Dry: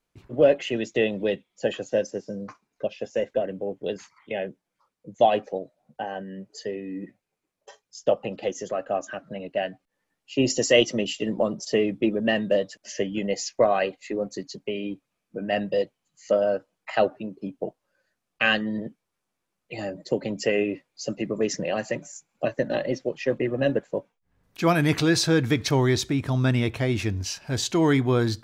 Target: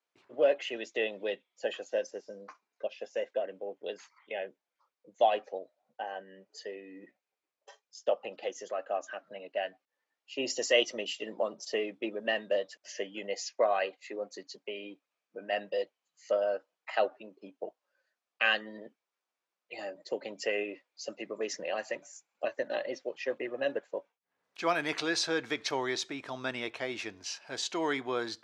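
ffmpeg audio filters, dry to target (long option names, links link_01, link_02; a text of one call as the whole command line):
ffmpeg -i in.wav -af "highpass=510,lowpass=6400,volume=-5dB" out.wav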